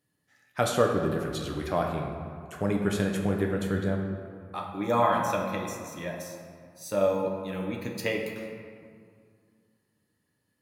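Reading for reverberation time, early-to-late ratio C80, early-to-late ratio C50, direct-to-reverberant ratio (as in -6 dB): 2.2 s, 5.0 dB, 3.5 dB, 0.5 dB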